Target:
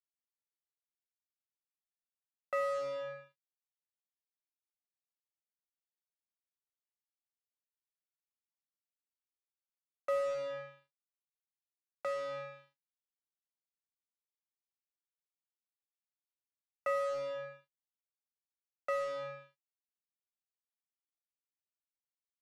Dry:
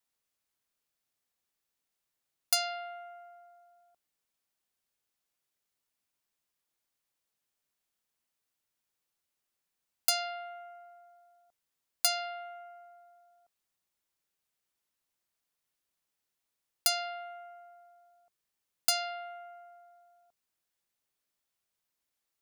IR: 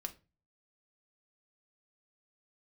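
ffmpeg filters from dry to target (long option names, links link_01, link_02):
-af "highpass=frequency=280:width_type=q:width=0.5412,highpass=frequency=280:width_type=q:width=1.307,lowpass=frequency=2100:width_type=q:width=0.5176,lowpass=frequency=2100:width_type=q:width=0.7071,lowpass=frequency=2100:width_type=q:width=1.932,afreqshift=-140,adynamicequalizer=threshold=0.00282:dfrequency=400:dqfactor=1.8:tfrequency=400:tqfactor=1.8:attack=5:release=100:ratio=0.375:range=2:mode=boostabove:tftype=bell,aphaser=in_gain=1:out_gain=1:delay=2.1:decay=0.35:speed=0.14:type=triangular,acrusher=bits=6:mix=0:aa=0.5,aemphasis=mode=reproduction:type=50fm"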